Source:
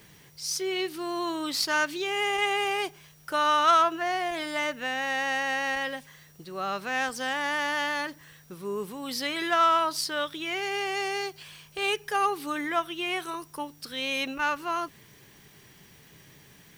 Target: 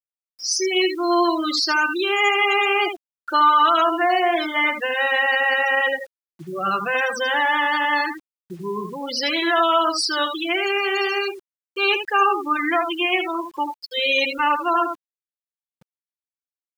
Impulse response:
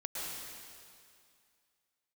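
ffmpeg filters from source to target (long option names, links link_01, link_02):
-filter_complex "[0:a]aecho=1:1:5.8:0.65,acrossover=split=340[link_01][link_02];[link_01]asoftclip=type=tanh:threshold=-40dB[link_03];[link_02]alimiter=limit=-18dB:level=0:latency=1:release=53[link_04];[link_03][link_04]amix=inputs=2:normalize=0,aecho=1:1:78:0.473,afftfilt=real='re*gte(hypot(re,im),0.0447)':imag='im*gte(hypot(re,im),0.0447)':win_size=1024:overlap=0.75,acrusher=bits=9:mix=0:aa=0.000001,volume=8dB"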